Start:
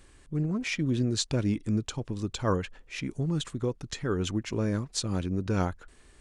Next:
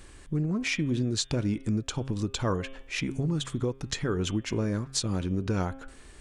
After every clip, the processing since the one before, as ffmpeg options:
-af "bandreject=f=134:t=h:w=4,bandreject=f=268:t=h:w=4,bandreject=f=402:t=h:w=4,bandreject=f=536:t=h:w=4,bandreject=f=670:t=h:w=4,bandreject=f=804:t=h:w=4,bandreject=f=938:t=h:w=4,bandreject=f=1.072k:t=h:w=4,bandreject=f=1.206k:t=h:w=4,bandreject=f=1.34k:t=h:w=4,bandreject=f=1.474k:t=h:w=4,bandreject=f=1.608k:t=h:w=4,bandreject=f=1.742k:t=h:w=4,bandreject=f=1.876k:t=h:w=4,bandreject=f=2.01k:t=h:w=4,bandreject=f=2.144k:t=h:w=4,bandreject=f=2.278k:t=h:w=4,bandreject=f=2.412k:t=h:w=4,bandreject=f=2.546k:t=h:w=4,bandreject=f=2.68k:t=h:w=4,bandreject=f=2.814k:t=h:w=4,bandreject=f=2.948k:t=h:w=4,bandreject=f=3.082k:t=h:w=4,bandreject=f=3.216k:t=h:w=4,bandreject=f=3.35k:t=h:w=4,bandreject=f=3.484k:t=h:w=4,bandreject=f=3.618k:t=h:w=4,acompressor=threshold=-34dB:ratio=2.5,volume=6.5dB"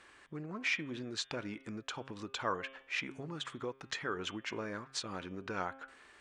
-af "bandpass=f=1.5k:t=q:w=0.84:csg=0"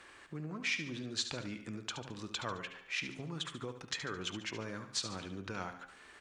-filter_complex "[0:a]acrossover=split=180|3000[a][b][c];[b]acompressor=threshold=-58dB:ratio=1.5[d];[a][d][c]amix=inputs=3:normalize=0,asplit=2[e][f];[f]aecho=0:1:72|144|216|288|360:0.316|0.142|0.064|0.0288|0.013[g];[e][g]amix=inputs=2:normalize=0,volume=3.5dB"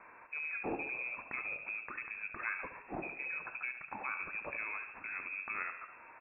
-filter_complex "[0:a]asplit=8[a][b][c][d][e][f][g][h];[b]adelay=137,afreqshift=-88,volume=-17.5dB[i];[c]adelay=274,afreqshift=-176,volume=-21.2dB[j];[d]adelay=411,afreqshift=-264,volume=-25dB[k];[e]adelay=548,afreqshift=-352,volume=-28.7dB[l];[f]adelay=685,afreqshift=-440,volume=-32.5dB[m];[g]adelay=822,afreqshift=-528,volume=-36.2dB[n];[h]adelay=959,afreqshift=-616,volume=-40dB[o];[a][i][j][k][l][m][n][o]amix=inputs=8:normalize=0,acrusher=bits=4:mode=log:mix=0:aa=0.000001,lowpass=f=2.3k:t=q:w=0.5098,lowpass=f=2.3k:t=q:w=0.6013,lowpass=f=2.3k:t=q:w=0.9,lowpass=f=2.3k:t=q:w=2.563,afreqshift=-2700,volume=1.5dB"

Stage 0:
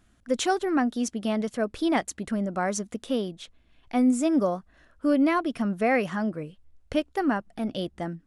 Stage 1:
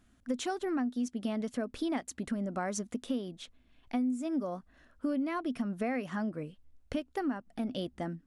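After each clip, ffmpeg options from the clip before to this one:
-af "equalizer=f=250:w=7.2:g=9.5,acompressor=threshold=-26dB:ratio=6,volume=-4dB"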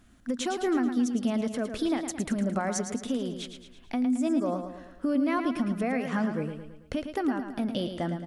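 -af "alimiter=level_in=3dB:limit=-24dB:level=0:latency=1:release=172,volume=-3dB,aecho=1:1:110|220|330|440|550|660:0.398|0.195|0.0956|0.0468|0.023|0.0112,volume=7dB"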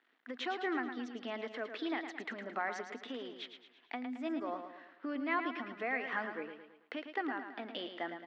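-af "aeval=exprs='sgn(val(0))*max(abs(val(0))-0.001,0)':c=same,highpass=f=350:w=0.5412,highpass=f=350:w=1.3066,equalizer=f=380:t=q:w=4:g=-4,equalizer=f=560:t=q:w=4:g=-9,equalizer=f=1.9k:t=q:w=4:g=7,lowpass=f=3.8k:w=0.5412,lowpass=f=3.8k:w=1.3066,volume=-3.5dB"

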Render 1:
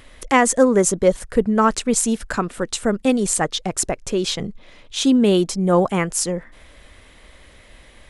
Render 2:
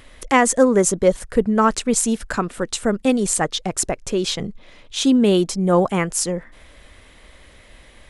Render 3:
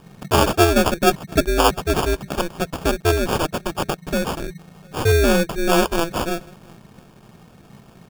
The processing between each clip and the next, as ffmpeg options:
-af anull
-filter_complex "[0:a]asplit=2[a][b];[b]adelay=699.7,volume=-29dB,highshelf=f=4k:g=-15.7[c];[a][c]amix=inputs=2:normalize=0,aeval=exprs='val(0)*sin(2*PI*170*n/s)':c=same,acrusher=samples=22:mix=1:aa=0.000001,volume=2.5dB"

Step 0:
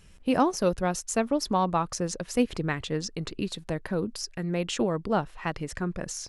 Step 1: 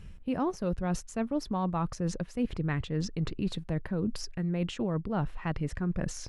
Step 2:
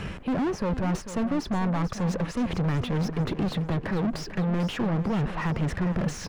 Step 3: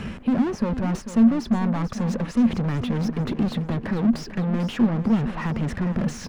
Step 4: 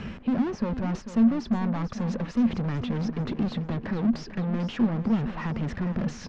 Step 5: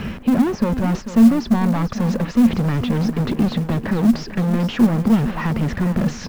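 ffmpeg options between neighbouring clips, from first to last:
-af "bass=f=250:g=9,treble=f=4k:g=-9,areverse,acompressor=threshold=-29dB:ratio=6,areverse,volume=1.5dB"
-filter_complex "[0:a]acrossover=split=290[a][b];[b]acompressor=threshold=-48dB:ratio=2[c];[a][c]amix=inputs=2:normalize=0,asplit=2[d][e];[e]highpass=f=720:p=1,volume=35dB,asoftclip=type=tanh:threshold=-22dB[f];[d][f]amix=inputs=2:normalize=0,lowpass=f=1.1k:p=1,volume=-6dB,aecho=1:1:444|888|1332|1776:0.251|0.108|0.0464|0.02,volume=3dB"
-af "equalizer=f=230:t=o:w=0.25:g=14"
-af "lowpass=f=6.2k:w=0.5412,lowpass=f=6.2k:w=1.3066,volume=-4dB"
-af "acrusher=bits=7:mode=log:mix=0:aa=0.000001,volume=9dB"

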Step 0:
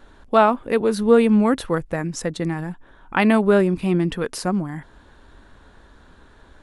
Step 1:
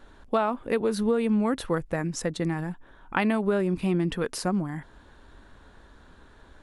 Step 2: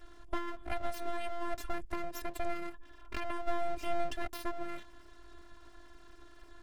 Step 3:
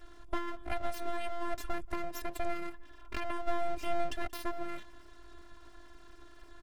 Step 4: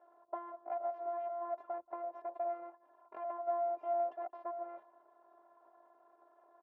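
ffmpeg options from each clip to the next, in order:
-af "acompressor=threshold=-17dB:ratio=10,volume=-3dB"
-filter_complex "[0:a]afftfilt=real='hypot(re,im)*cos(PI*b)':imag='0':win_size=512:overlap=0.75,acrossover=split=400[a][b];[b]acompressor=threshold=-39dB:ratio=6[c];[a][c]amix=inputs=2:normalize=0,aeval=exprs='abs(val(0))':c=same,volume=1.5dB"
-filter_complex "[0:a]asplit=2[a][b];[b]adelay=180.8,volume=-25dB,highshelf=f=4k:g=-4.07[c];[a][c]amix=inputs=2:normalize=0,volume=1dB"
-af "asuperpass=centerf=700:order=4:qfactor=1.6,volume=2dB"

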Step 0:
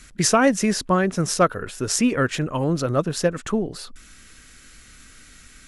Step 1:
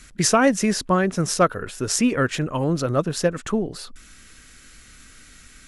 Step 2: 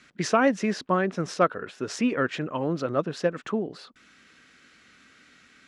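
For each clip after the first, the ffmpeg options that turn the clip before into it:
-af anull
-af "highpass=190,lowpass=3.7k,volume=-3.5dB"

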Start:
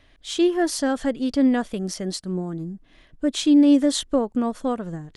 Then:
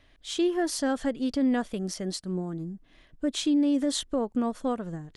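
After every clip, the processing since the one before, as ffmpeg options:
-af "alimiter=limit=-14dB:level=0:latency=1:release=61,volume=-4dB"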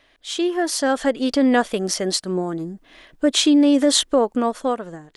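-af "bass=f=250:g=-14,treble=f=4k:g=-1,dynaudnorm=f=220:g=9:m=7.5dB,volume=6.5dB"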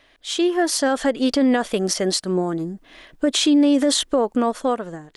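-af "alimiter=limit=-12dB:level=0:latency=1:release=39,volume=2dB"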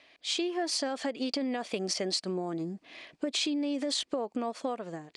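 -af "acompressor=threshold=-24dB:ratio=6,highpass=140,equalizer=f=690:t=q:w=4:g=3,equalizer=f=1.5k:t=q:w=4:g=-4,equalizer=f=2.4k:t=q:w=4:g=8,equalizer=f=4.6k:t=q:w=4:g=7,lowpass=f=8.9k:w=0.5412,lowpass=f=8.9k:w=1.3066,volume=-5.5dB"

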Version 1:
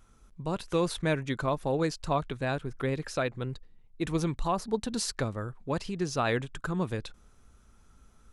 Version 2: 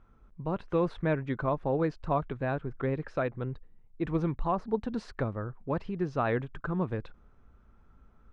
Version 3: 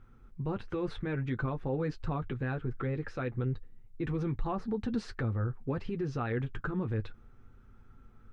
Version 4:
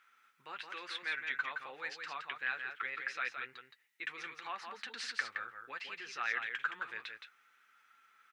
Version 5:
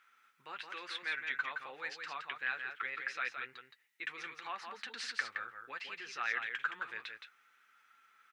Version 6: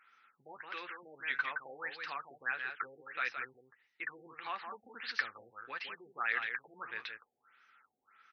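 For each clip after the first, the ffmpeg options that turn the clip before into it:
-af "lowpass=1.7k"
-af "equalizer=f=100:t=o:w=0.33:g=6,equalizer=f=630:t=o:w=0.33:g=-10,equalizer=f=1k:t=o:w=0.33:g=-7,alimiter=level_in=3.5dB:limit=-24dB:level=0:latency=1:release=65,volume=-3.5dB,flanger=delay=7.7:depth=1.3:regen=-37:speed=0.52:shape=triangular,volume=7dB"
-af "highpass=f=2k:t=q:w=1.5,aecho=1:1:169:0.501,volume=6dB"
-af anull
-af "afftfilt=real='re*lt(b*sr/1024,790*pow(6500/790,0.5+0.5*sin(2*PI*1.6*pts/sr)))':imag='im*lt(b*sr/1024,790*pow(6500/790,0.5+0.5*sin(2*PI*1.6*pts/sr)))':win_size=1024:overlap=0.75,volume=2dB"

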